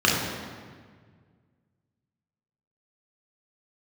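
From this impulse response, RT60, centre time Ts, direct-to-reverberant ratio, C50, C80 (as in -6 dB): 1.7 s, 83 ms, -4.5 dB, 1.0 dB, 3.0 dB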